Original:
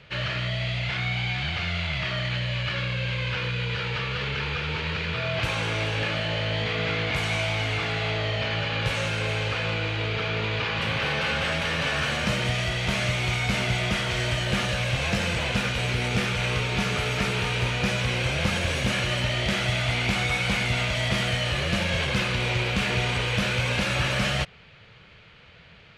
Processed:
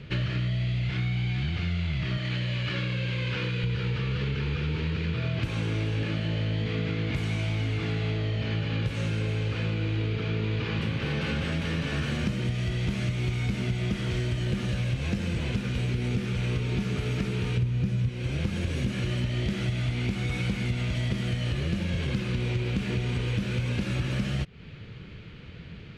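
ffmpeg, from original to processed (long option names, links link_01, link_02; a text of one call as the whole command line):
ffmpeg -i in.wav -filter_complex "[0:a]asettb=1/sr,asplit=3[link_01][link_02][link_03];[link_01]atrim=end=2.174[link_04];[link_02]atrim=start=2.17:end=3.64,asetpts=PTS-STARTPTS,afade=type=in:duration=0.004:curve=qsin,afade=type=out:start_time=1.466:duration=0.004:curve=qsin,highpass=frequency=270:poles=1[link_05];[link_03]atrim=start=3.636[link_06];[link_04][link_05]acrossfade=duration=0.004:curve1=hsin:curve2=qsin[link_07];[link_07][link_06]acrossfade=duration=0.004:curve1=qsin:curve2=hsin,asettb=1/sr,asplit=3[link_08][link_09][link_10];[link_08]atrim=end=17.574[link_11];[link_09]atrim=start=17.57:end=18.09,asetpts=PTS-STARTPTS,afade=type=in:duration=0.004:curve=qsin,afade=type=out:start_time=0.516:duration=0.004:curve=qsin,equalizer=frequency=110:width_type=o:width=1.9:gain=11.5[link_12];[link_10]atrim=start=18.086[link_13];[link_11][link_12]acrossfade=duration=0.004:curve1=hsin:curve2=qsin[link_14];[link_14][link_13]acrossfade=duration=0.004:curve1=qsin:curve2=hsin,lowshelf=frequency=460:width_type=q:width=1.5:gain=11,acompressor=threshold=-26dB:ratio=6" out.wav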